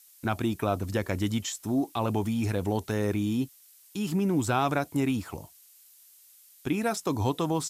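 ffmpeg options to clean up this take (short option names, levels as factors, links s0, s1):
-af "adeclick=t=4,afftdn=nr=18:nf=-56"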